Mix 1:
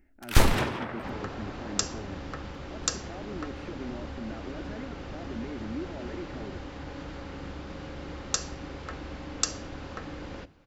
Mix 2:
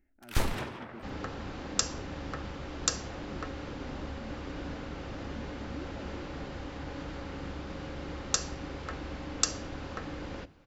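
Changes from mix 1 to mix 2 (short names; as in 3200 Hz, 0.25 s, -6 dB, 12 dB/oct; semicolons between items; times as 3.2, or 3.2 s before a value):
speech -9.0 dB; first sound -9.0 dB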